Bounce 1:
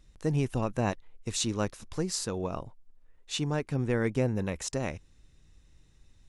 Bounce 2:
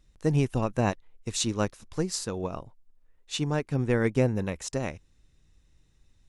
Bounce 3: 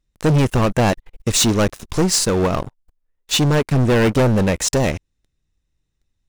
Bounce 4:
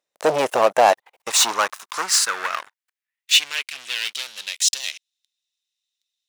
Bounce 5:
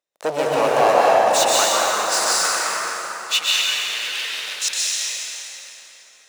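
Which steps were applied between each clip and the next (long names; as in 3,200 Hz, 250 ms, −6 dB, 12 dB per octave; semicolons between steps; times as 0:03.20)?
expander for the loud parts 1.5 to 1, over −40 dBFS; level +4.5 dB
leveller curve on the samples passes 5
high-pass filter sweep 610 Hz → 3,500 Hz, 0:00.56–0:04.18
dense smooth reverb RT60 4.3 s, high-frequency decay 0.6×, pre-delay 110 ms, DRR −7 dB; level −5 dB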